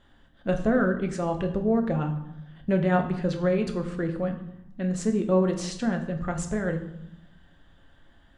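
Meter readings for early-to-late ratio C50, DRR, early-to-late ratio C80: 10.0 dB, 4.5 dB, 12.5 dB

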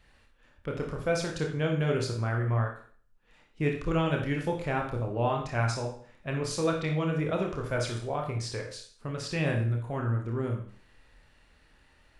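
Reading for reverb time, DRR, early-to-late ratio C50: 0.45 s, 1.0 dB, 5.5 dB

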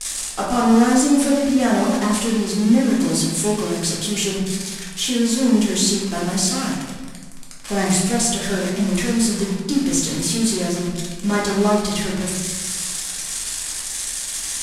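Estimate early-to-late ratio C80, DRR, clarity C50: 4.5 dB, −5.5 dB, 2.0 dB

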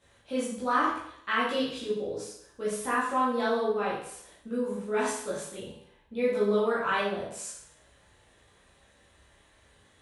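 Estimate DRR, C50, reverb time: −8.5 dB, 2.5 dB, 0.65 s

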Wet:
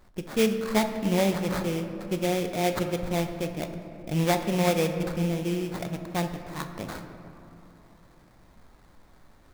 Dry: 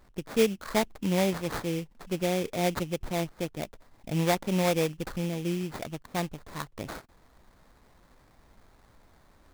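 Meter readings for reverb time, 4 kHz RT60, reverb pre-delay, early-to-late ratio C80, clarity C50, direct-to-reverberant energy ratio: 3.0 s, 1.4 s, 5 ms, 9.0 dB, 8.0 dB, 6.0 dB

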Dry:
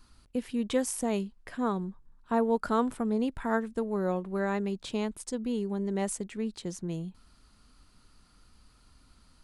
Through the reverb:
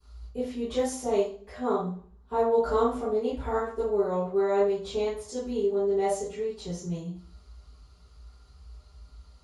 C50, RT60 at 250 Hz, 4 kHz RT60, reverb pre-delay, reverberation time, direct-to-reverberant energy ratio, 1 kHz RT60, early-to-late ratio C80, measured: 1.0 dB, 0.60 s, 0.40 s, 3 ms, 0.45 s, −18.5 dB, 0.45 s, 8.0 dB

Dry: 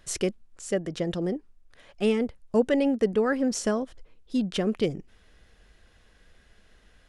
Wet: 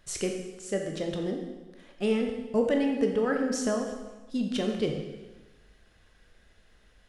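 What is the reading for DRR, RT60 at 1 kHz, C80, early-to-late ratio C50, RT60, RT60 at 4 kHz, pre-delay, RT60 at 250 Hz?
2.0 dB, 1.2 s, 6.5 dB, 4.5 dB, 1.2 s, 1.1 s, 7 ms, 1.2 s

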